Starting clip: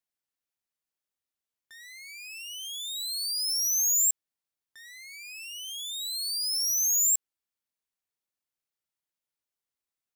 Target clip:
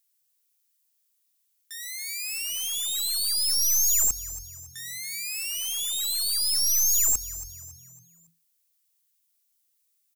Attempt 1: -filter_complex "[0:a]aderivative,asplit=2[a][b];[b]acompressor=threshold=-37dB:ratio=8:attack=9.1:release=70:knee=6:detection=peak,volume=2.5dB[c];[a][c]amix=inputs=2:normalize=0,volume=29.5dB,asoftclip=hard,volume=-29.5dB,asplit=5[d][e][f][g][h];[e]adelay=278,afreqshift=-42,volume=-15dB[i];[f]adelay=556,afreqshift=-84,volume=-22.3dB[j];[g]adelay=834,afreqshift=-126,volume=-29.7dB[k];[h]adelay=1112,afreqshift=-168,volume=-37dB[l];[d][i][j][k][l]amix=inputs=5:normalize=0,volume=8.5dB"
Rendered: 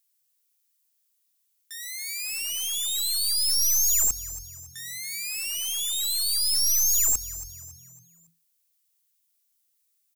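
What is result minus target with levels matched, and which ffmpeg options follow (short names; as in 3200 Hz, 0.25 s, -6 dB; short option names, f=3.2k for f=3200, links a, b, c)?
compressor: peak gain reduction -6.5 dB
-filter_complex "[0:a]aderivative,asplit=2[a][b];[b]acompressor=threshold=-44.5dB:ratio=8:attack=9.1:release=70:knee=6:detection=peak,volume=2.5dB[c];[a][c]amix=inputs=2:normalize=0,volume=29.5dB,asoftclip=hard,volume=-29.5dB,asplit=5[d][e][f][g][h];[e]adelay=278,afreqshift=-42,volume=-15dB[i];[f]adelay=556,afreqshift=-84,volume=-22.3dB[j];[g]adelay=834,afreqshift=-126,volume=-29.7dB[k];[h]adelay=1112,afreqshift=-168,volume=-37dB[l];[d][i][j][k][l]amix=inputs=5:normalize=0,volume=8.5dB"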